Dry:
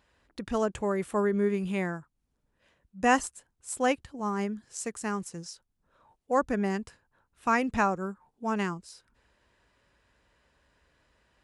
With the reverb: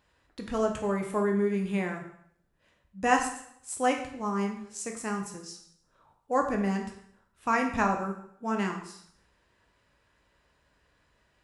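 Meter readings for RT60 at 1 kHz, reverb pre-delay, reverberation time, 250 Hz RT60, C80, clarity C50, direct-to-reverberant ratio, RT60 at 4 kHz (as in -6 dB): 0.65 s, 5 ms, 0.70 s, 0.65 s, 10.0 dB, 7.0 dB, 2.0 dB, 0.65 s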